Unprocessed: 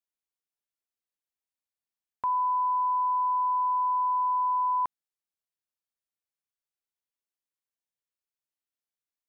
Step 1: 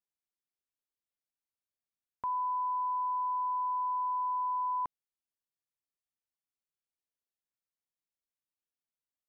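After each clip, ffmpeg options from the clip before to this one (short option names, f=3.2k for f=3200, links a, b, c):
-af "lowshelf=f=500:g=6.5,volume=-7.5dB"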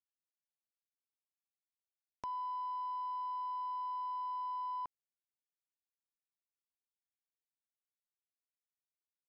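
-af "aresample=11025,aeval=exprs='sgn(val(0))*max(abs(val(0))-0.00188,0)':c=same,aresample=44100,acompressor=mode=upward:threshold=-37dB:ratio=2.5,volume=-6.5dB"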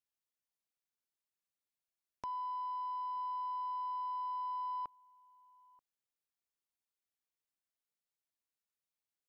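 -filter_complex "[0:a]asplit=2[a][b];[b]adelay=932.9,volume=-24dB,highshelf=f=4k:g=-21[c];[a][c]amix=inputs=2:normalize=0"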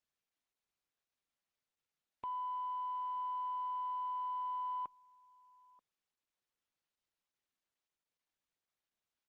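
-af "aresample=8000,volume=35dB,asoftclip=hard,volume=-35dB,aresample=44100" -ar 48000 -c:a libopus -b:a 16k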